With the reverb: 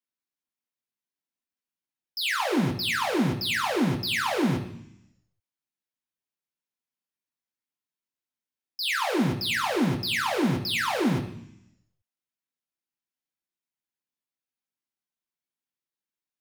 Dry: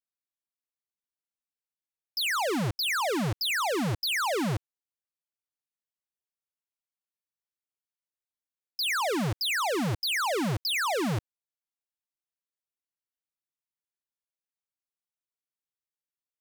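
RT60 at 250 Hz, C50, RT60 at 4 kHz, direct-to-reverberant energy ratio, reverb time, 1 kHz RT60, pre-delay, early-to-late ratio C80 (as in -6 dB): 0.95 s, 10.0 dB, 1.2 s, -0.5 dB, 0.70 s, 0.70 s, 3 ms, 12.5 dB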